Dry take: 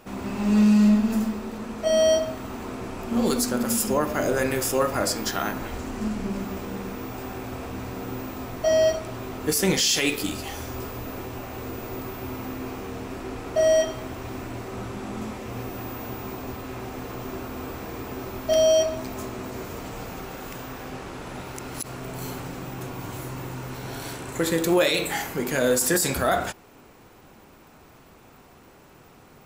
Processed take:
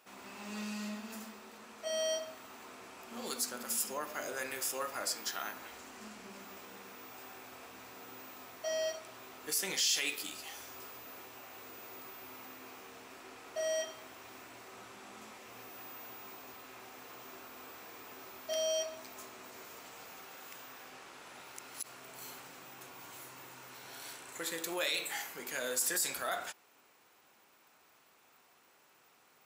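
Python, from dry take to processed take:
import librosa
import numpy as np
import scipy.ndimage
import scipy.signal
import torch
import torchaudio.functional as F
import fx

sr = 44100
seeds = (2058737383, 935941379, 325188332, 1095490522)

y = fx.highpass(x, sr, hz=1500.0, slope=6)
y = F.gain(torch.from_numpy(y), -8.0).numpy()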